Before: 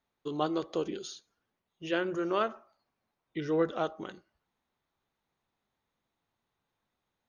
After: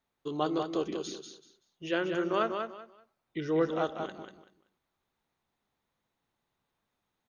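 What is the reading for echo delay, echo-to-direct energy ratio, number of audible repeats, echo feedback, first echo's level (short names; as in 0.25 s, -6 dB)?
0.191 s, -6.0 dB, 3, 23%, -6.0 dB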